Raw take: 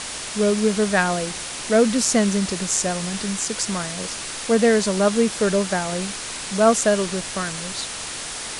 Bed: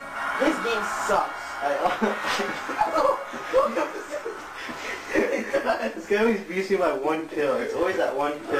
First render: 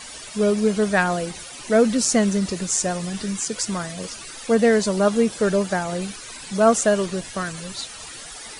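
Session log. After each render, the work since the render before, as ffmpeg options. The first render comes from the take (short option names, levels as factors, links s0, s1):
-af "afftdn=nr=14:nf=-32"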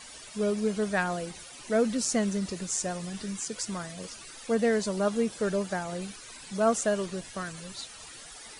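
-af "volume=0.376"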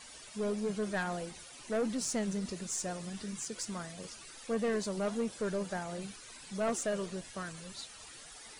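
-af "flanger=delay=2.1:depth=7.1:regen=-87:speed=1.5:shape=triangular,aeval=exprs='(tanh(20*val(0)+0.15)-tanh(0.15))/20':c=same"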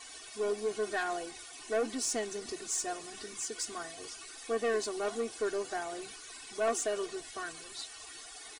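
-af "lowshelf=f=170:g=-10.5,aecho=1:1:2.7:0.98"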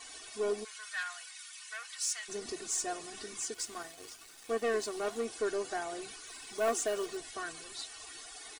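-filter_complex "[0:a]asplit=3[s0][s1][s2];[s0]afade=t=out:st=0.63:d=0.02[s3];[s1]highpass=f=1300:w=0.5412,highpass=f=1300:w=1.3066,afade=t=in:st=0.63:d=0.02,afade=t=out:st=2.28:d=0.02[s4];[s2]afade=t=in:st=2.28:d=0.02[s5];[s3][s4][s5]amix=inputs=3:normalize=0,asettb=1/sr,asplit=3[s6][s7][s8];[s6]atrim=end=3.544[s9];[s7]atrim=start=3.54:end=5.25,asetpts=PTS-STARTPTS,afade=t=in:d=0.004:c=qsin,afade=t=out:st=1.706:d=0.004:c=qsin,aeval=exprs='sgn(val(0))*max(abs(val(0))-0.00316,0)':c=same[s10];[s8]atrim=start=5.246[s11];[s9][s10]acrossfade=d=0.004:c1=hsin:c2=qsin[s12];[s12][s11]acrossfade=d=0.004:c1=qsin:c2=hsin,asettb=1/sr,asplit=3[s13][s14][s15];[s13]atrim=end=6.264[s16];[s14]atrim=start=6.26:end=7.17,asetpts=PTS-STARTPTS,afade=t=in:d=0.004:c=qsin,afade=t=out:st=0.906:d=0.004:c=qsin,acrusher=bits=5:mode=log:mix=0:aa=0.000001[s17];[s15]atrim=start=7.166[s18];[s16][s17]acrossfade=d=0.004:c1=hsin:c2=qsin[s19];[s19][s18]acrossfade=d=0.004:c1=qsin:c2=hsin"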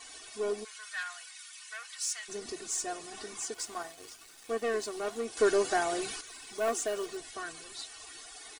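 -filter_complex "[0:a]asettb=1/sr,asplit=3[s0][s1][s2];[s0]atrim=end=3.114[s3];[s1]atrim=start=3.11:end=3.93,asetpts=PTS-STARTPTS,afade=t=in:d=0.004:c=qsin,afade=t=out:st=0.816:d=0.004:c=qsin,equalizer=f=820:t=o:w=1.2:g=7[s4];[s2]atrim=start=3.926[s5];[s3][s4]acrossfade=d=0.004:c1=hsin:c2=qsin[s6];[s6][s5]acrossfade=d=0.004:c1=qsin:c2=hsin,asplit=3[s7][s8][s9];[s7]atrim=end=5.372[s10];[s8]atrim=start=5.368:end=6.212,asetpts=PTS-STARTPTS,volume=2.51[s11];[s9]atrim=start=6.208[s12];[s10][s11]acrossfade=d=0.004:c1=hsin:c2=hsin[s13];[s13][s12]acrossfade=d=0.004:c1=hsin:c2=hsin"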